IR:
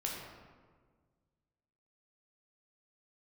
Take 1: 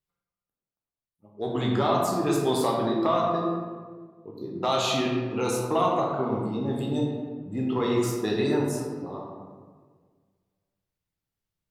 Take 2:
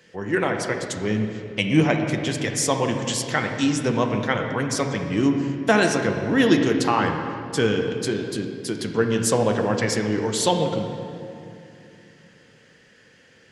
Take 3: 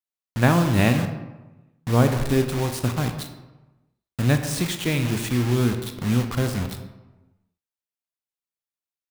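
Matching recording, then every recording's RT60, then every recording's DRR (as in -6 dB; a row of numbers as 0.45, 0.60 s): 1; 1.6, 2.7, 1.1 s; -2.5, 3.5, 6.0 dB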